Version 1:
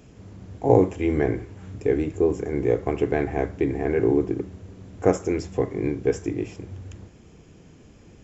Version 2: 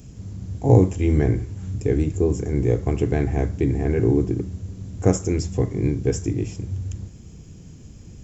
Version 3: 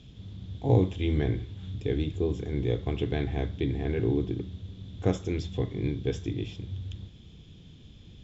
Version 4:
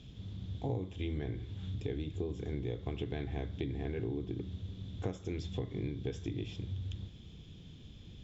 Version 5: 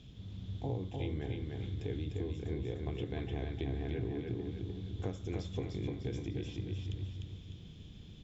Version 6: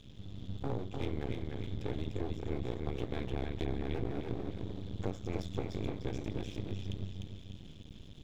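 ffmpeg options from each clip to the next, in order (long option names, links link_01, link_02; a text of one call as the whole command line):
ffmpeg -i in.wav -af "bass=frequency=250:gain=14,treble=frequency=4000:gain=14,volume=-3.5dB" out.wav
ffmpeg -i in.wav -af "lowpass=frequency=3500:width_type=q:width=12,volume=-8dB" out.wav
ffmpeg -i in.wav -af "acompressor=threshold=-32dB:ratio=6,volume=-1.5dB" out.wav
ffmpeg -i in.wav -af "aecho=1:1:301|602|903|1204|1505:0.668|0.281|0.118|0.0495|0.0208,volume=-2dB" out.wav
ffmpeg -i in.wav -af "aeval=exprs='max(val(0),0)':channel_layout=same,volume=4dB" out.wav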